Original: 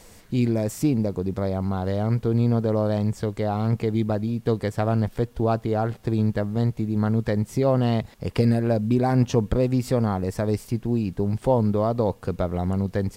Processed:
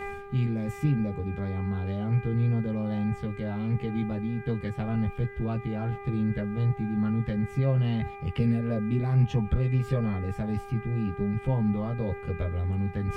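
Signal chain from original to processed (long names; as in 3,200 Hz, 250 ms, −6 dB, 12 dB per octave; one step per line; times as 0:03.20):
drawn EQ curve 150 Hz 0 dB, 760 Hz −13 dB, 3,000 Hz −1 dB, 4,800 Hz −14 dB
hum with harmonics 400 Hz, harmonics 6, −41 dBFS −4 dB per octave
reversed playback
upward compression, threshold −24 dBFS
reversed playback
multi-voice chorus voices 6, 0.21 Hz, delay 14 ms, depth 1.2 ms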